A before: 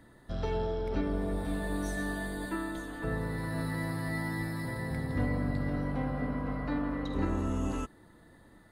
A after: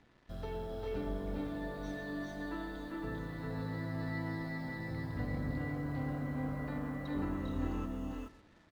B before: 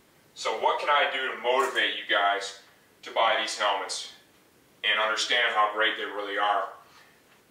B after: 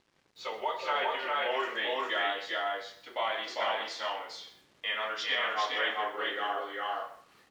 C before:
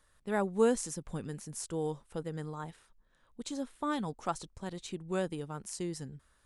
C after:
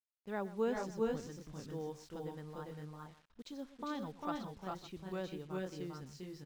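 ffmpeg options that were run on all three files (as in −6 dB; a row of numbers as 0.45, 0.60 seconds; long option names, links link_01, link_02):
-af "lowpass=frequency=5400:width=0.5412,lowpass=frequency=5400:width=1.3066,aecho=1:1:123|399|426|554:0.15|0.708|0.596|0.119,acrusher=bits=8:mix=0:aa=0.5,volume=-8.5dB"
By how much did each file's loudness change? −5.5, −6.5, −6.5 LU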